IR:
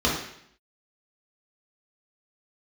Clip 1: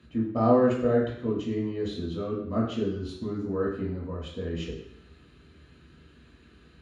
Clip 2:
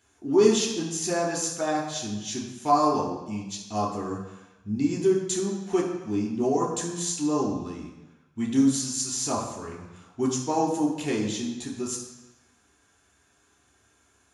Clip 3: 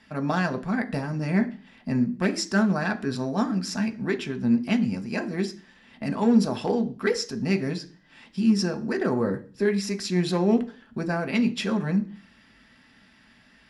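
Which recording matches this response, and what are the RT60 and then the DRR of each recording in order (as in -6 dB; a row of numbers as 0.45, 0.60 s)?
1; 0.70, 1.0, 0.40 s; -6.0, -4.0, 5.5 dB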